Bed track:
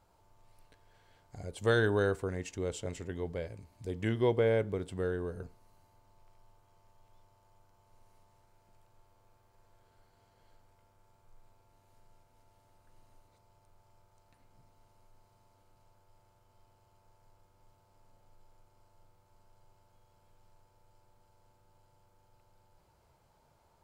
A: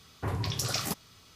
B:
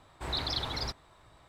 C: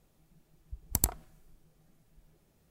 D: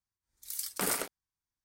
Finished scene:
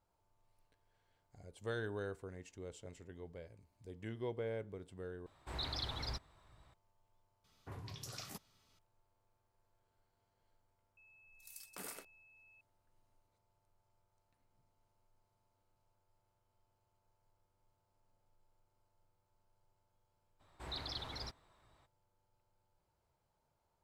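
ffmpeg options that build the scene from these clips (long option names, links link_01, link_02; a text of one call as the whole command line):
ffmpeg -i bed.wav -i cue0.wav -i cue1.wav -i cue2.wav -i cue3.wav -filter_complex "[2:a]asplit=2[link_01][link_02];[0:a]volume=-13.5dB[link_03];[link_01]asubboost=boost=3:cutoff=220[link_04];[4:a]aeval=exprs='val(0)+0.00501*sin(2*PI*2600*n/s)':channel_layout=same[link_05];[link_03]asplit=2[link_06][link_07];[link_06]atrim=end=5.264[link_08];[link_04]atrim=end=1.48,asetpts=PTS-STARTPTS,volume=-8.5dB[link_09];[link_07]atrim=start=6.736[link_10];[1:a]atrim=end=1.35,asetpts=PTS-STARTPTS,volume=-17dB,afade=type=in:duration=0.004:curve=hsin,afade=type=out:start_time=1.346:duration=0.004:curve=hsin,adelay=7440[link_11];[link_05]atrim=end=1.64,asetpts=PTS-STARTPTS,volume=-17dB,afade=type=in:duration=0.004:curve=hsin,afade=type=out:start_time=1.636:duration=0.004:curve=hsin,adelay=10970[link_12];[link_02]atrim=end=1.48,asetpts=PTS-STARTPTS,volume=-11dB,afade=type=in:duration=0.02,afade=type=out:start_time=1.46:duration=0.02,adelay=20390[link_13];[link_08][link_09]acrossfade=duration=0.004:curve1=hsin:curve2=hsin[link_14];[link_14][link_10]acrossfade=duration=0.004:curve1=hsin:curve2=hsin[link_15];[link_15][link_11][link_12][link_13]amix=inputs=4:normalize=0" out.wav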